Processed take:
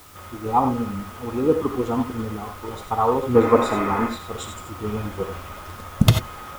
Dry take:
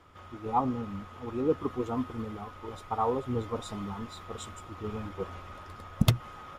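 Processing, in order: spectral gain 3.35–4.08, 220–2700 Hz +11 dB; non-linear reverb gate 0.11 s rising, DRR 4.5 dB; in parallel at -5.5 dB: requantised 8-bit, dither triangular; on the sum: gain +4 dB

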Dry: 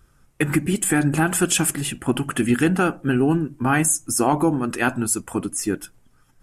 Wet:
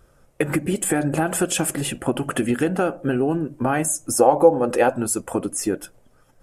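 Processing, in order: bell 560 Hz +14 dB 0.87 oct; compressor 3:1, threshold -19 dBFS, peak gain reduction 10 dB; 4.13–4.9 small resonant body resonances 510/800 Hz, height 12 dB

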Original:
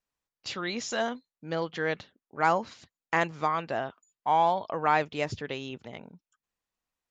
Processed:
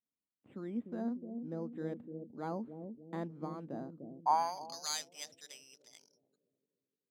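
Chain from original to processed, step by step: careless resampling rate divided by 8×, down filtered, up hold; band-pass sweep 240 Hz -> 5700 Hz, 3.91–4.78; analogue delay 0.299 s, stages 1024, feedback 51%, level -5.5 dB

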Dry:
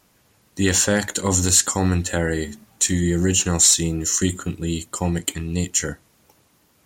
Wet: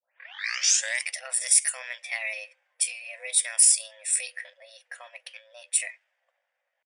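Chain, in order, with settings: tape start at the beginning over 1.10 s; FFT band-pass 370–7600 Hz; compressor 1.5:1, threshold -42 dBFS, peak gain reduction 10.5 dB; pitch shift +5 st; resonant high shelf 1500 Hz +7 dB, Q 3; low-pass opened by the level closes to 720 Hz, open at -18 dBFS; tilt +3 dB/oct; notch 4100 Hz, Q 7; gain -8 dB

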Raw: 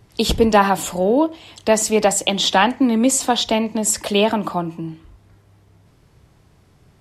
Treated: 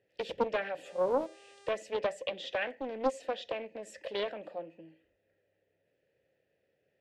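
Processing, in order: vowel filter e; 0.84–1.69 buzz 400 Hz, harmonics 24, -53 dBFS -4 dB/oct; Doppler distortion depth 0.46 ms; gain -5.5 dB

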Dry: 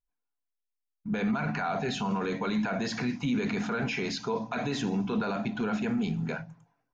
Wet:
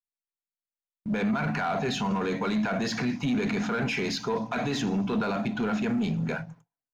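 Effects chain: gate with hold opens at -40 dBFS; sample leveller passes 1

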